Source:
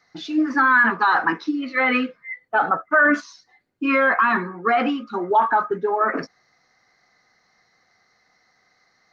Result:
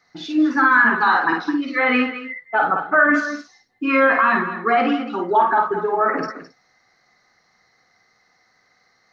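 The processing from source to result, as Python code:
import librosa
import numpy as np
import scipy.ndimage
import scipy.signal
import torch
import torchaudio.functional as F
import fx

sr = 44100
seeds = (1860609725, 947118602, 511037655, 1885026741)

y = fx.echo_multitap(x, sr, ms=(52, 213, 271), db=(-4.0, -11.0, -19.5))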